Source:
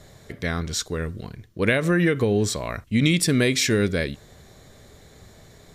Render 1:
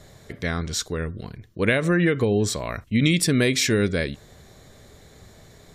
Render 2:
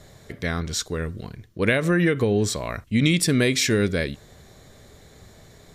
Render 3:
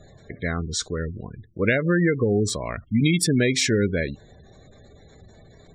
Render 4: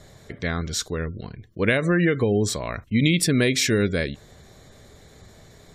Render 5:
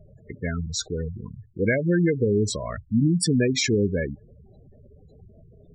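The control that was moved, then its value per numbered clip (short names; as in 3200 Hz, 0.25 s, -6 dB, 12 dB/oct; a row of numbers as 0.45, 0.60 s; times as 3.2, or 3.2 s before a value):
spectral gate, under each frame's peak: -45, -60, -20, -35, -10 dB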